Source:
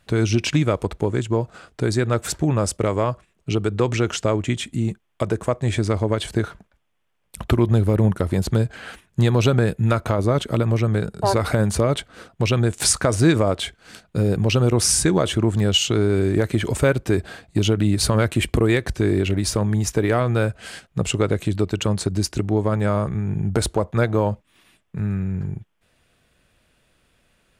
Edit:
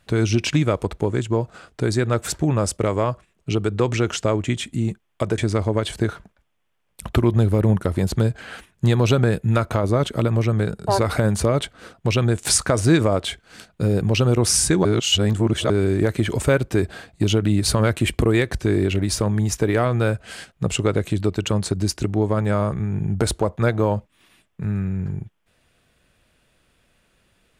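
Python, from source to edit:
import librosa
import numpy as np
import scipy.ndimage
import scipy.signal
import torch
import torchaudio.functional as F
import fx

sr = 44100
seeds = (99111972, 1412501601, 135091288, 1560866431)

y = fx.edit(x, sr, fx.cut(start_s=5.38, length_s=0.35),
    fx.reverse_span(start_s=15.2, length_s=0.85), tone=tone)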